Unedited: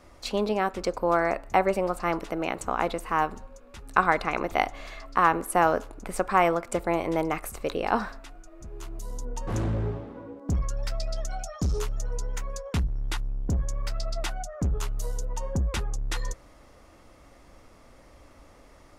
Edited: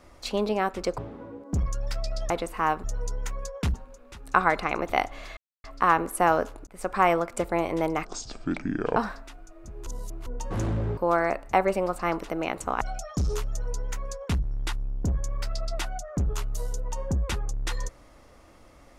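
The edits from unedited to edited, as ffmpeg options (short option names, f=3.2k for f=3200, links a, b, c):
-filter_complex "[0:a]asplit=13[a][b][c][d][e][f][g][h][i][j][k][l][m];[a]atrim=end=0.982[n];[b]atrim=start=9.938:end=11.262[o];[c]atrim=start=2.818:end=3.362[p];[d]atrim=start=11.948:end=12.852[q];[e]atrim=start=3.358:end=4.99,asetpts=PTS-STARTPTS,afade=t=out:st=1.628:d=0.004:c=hsin,apad=pad_dur=0.27[r];[f]atrim=start=4.99:end=6.02,asetpts=PTS-STARTPTS,afade=t=in:d=0.004:c=hsin,afade=t=out:st=1.026:d=0.004:c=hsin[s];[g]atrim=start=6.02:end=7.404,asetpts=PTS-STARTPTS,afade=t=in:d=0.28[t];[h]atrim=start=7.4:end=7.93,asetpts=PTS-STARTPTS,asetrate=25578,aresample=44100,atrim=end_sample=40298,asetpts=PTS-STARTPTS[u];[i]atrim=start=7.926:end=8.832[v];[j]atrim=start=8.828:end=9.232,asetpts=PTS-STARTPTS,areverse[w];[k]atrim=start=9.228:end=9.942[x];[l]atrim=start=0.978:end=2.822[y];[m]atrim=start=11.258[z];[n][o]acrossfade=d=0.004:c1=hsin:c2=hsin[aa];[aa][p]acrossfade=d=0.004:c1=hsin:c2=hsin[ab];[ab][q]acrossfade=d=0.004:c1=hsin:c2=hsin[ac];[r][s][t]concat=n=3:v=0:a=1[ad];[ac][ad]acrossfade=d=0.004:c1=hsin:c2=hsin[ae];[ae][u]acrossfade=d=0.004:c1=hsin:c2=hsin[af];[af][v]acrossfade=d=0.004:c1=hsin:c2=hsin[ag];[ag][w]acrossfade=d=0.004:c1=hsin:c2=hsin[ah];[ah][x]acrossfade=d=0.004:c1=hsin:c2=hsin[ai];[ai][y]acrossfade=d=0.004:c1=hsin:c2=hsin[aj];[aj][z]acrossfade=d=0.004:c1=hsin:c2=hsin"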